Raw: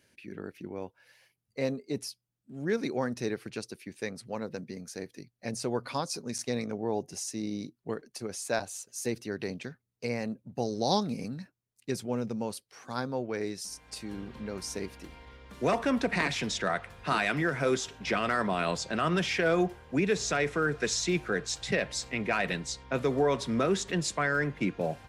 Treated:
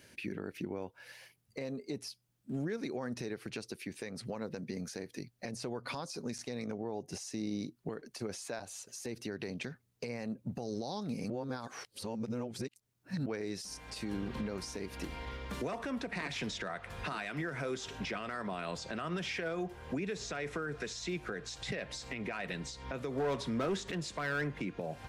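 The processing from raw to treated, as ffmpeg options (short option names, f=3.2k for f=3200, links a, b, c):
-filter_complex "[0:a]asettb=1/sr,asplit=3[a][b][c];[a]atrim=end=23.124[d];[b]atrim=start=23.12:end=24.5,asetpts=PTS-STARTPTS,afade=t=in:d=0.004:c=qsin,afade=t=out:st=1.376:d=0.004:c=qsin,volume=23dB,asoftclip=hard,volume=-23dB[e];[c]atrim=start=24.496[f];[d][e]acrossfade=d=0.004:c1=hsin:c2=qsin[g];[g][f]acrossfade=d=0.004:c1=qsin:c2=hsin,asplit=3[h][i][j];[h]atrim=end=11.302[k];[i]atrim=start=11.298:end=13.262,asetpts=PTS-STARTPTS,areverse[l];[j]atrim=start=13.258[m];[k][l]acrossfade=d=0.004:c1=hsin:c2=hsin[n];[n][m]acrossfade=d=0.004:c1=hsin:c2=hsin,acompressor=threshold=-38dB:ratio=6,alimiter=level_in=12dB:limit=-24dB:level=0:latency=1:release=181,volume=-12dB,acrossover=split=4600[o][p];[p]acompressor=threshold=-55dB:ratio=4:attack=1:release=60[q];[o][q]amix=inputs=2:normalize=0,volume=8dB"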